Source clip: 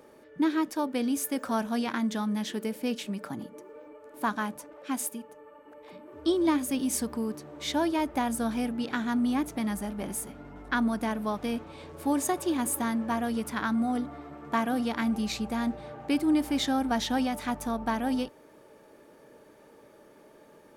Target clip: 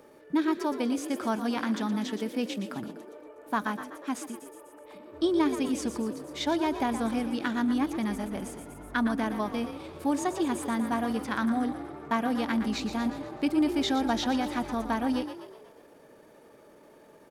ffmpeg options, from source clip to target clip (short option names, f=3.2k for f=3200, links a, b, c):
-filter_complex "[0:a]asplit=7[a][b][c][d][e][f][g];[b]adelay=147,afreqshift=43,volume=-10.5dB[h];[c]adelay=294,afreqshift=86,volume=-16.2dB[i];[d]adelay=441,afreqshift=129,volume=-21.9dB[j];[e]adelay=588,afreqshift=172,volume=-27.5dB[k];[f]adelay=735,afreqshift=215,volume=-33.2dB[l];[g]adelay=882,afreqshift=258,volume=-38.9dB[m];[a][h][i][j][k][l][m]amix=inputs=7:normalize=0,acrossover=split=6900[n][o];[o]acompressor=threshold=-52dB:ratio=4:attack=1:release=60[p];[n][p]amix=inputs=2:normalize=0,atempo=1.2"